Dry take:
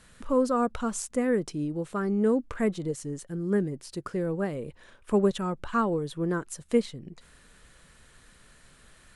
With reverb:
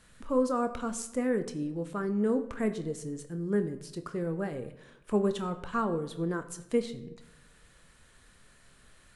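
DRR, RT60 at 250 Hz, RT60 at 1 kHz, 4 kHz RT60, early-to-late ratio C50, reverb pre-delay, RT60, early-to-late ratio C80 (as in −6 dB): 8.5 dB, 1.1 s, 0.80 s, 0.60 s, 13.0 dB, 24 ms, 0.90 s, 15.0 dB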